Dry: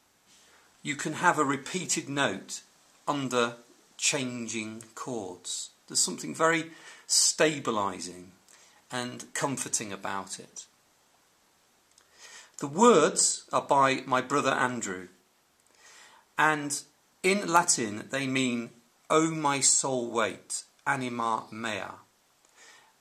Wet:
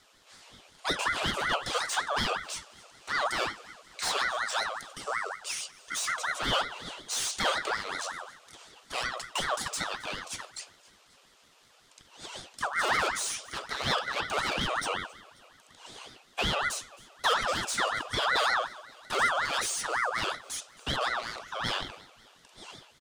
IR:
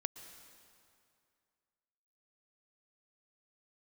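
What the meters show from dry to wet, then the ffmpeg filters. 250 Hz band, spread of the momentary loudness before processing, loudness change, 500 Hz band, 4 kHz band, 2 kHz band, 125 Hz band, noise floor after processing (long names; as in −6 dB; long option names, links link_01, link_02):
−12.5 dB, 16 LU, −3.0 dB, −7.0 dB, +3.0 dB, +1.5 dB, −5.5 dB, −61 dBFS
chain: -filter_complex "[0:a]asplit=2[link_01][link_02];[link_02]highpass=frequency=720:poles=1,volume=28dB,asoftclip=type=tanh:threshold=-5.5dB[link_03];[link_01][link_03]amix=inputs=2:normalize=0,lowpass=frequency=1500:poles=1,volume=-6dB,asuperstop=centerf=820:order=8:qfactor=0.71,asplit=2[link_04][link_05];[link_05]aecho=0:1:268|536|804|1072:0.0794|0.0429|0.0232|0.0125[link_06];[link_04][link_06]amix=inputs=2:normalize=0,aeval=exprs='val(0)*sin(2*PI*1300*n/s+1300*0.35/5.4*sin(2*PI*5.4*n/s))':channel_layout=same,volume=-4.5dB"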